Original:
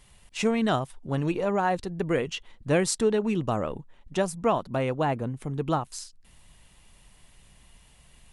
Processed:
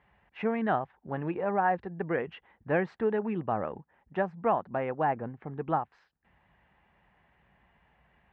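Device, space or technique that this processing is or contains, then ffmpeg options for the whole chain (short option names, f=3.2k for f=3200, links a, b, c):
bass cabinet: -af "highpass=f=61:w=0.5412,highpass=f=61:w=1.3066,equalizer=f=79:t=q:w=4:g=-8,equalizer=f=130:t=q:w=4:g=-6,equalizer=f=270:t=q:w=4:g=-3,equalizer=f=800:t=q:w=4:g=7,equalizer=f=1.7k:t=q:w=4:g=6,lowpass=f=2.2k:w=0.5412,lowpass=f=2.2k:w=1.3066,volume=-4.5dB"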